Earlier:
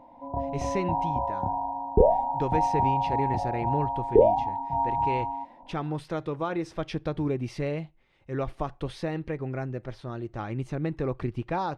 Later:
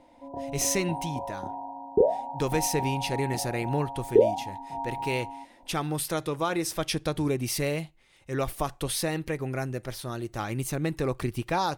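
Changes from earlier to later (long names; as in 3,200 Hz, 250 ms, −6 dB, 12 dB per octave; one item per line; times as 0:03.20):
background: add resonant band-pass 370 Hz, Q 1.6
master: remove head-to-tape spacing loss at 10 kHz 29 dB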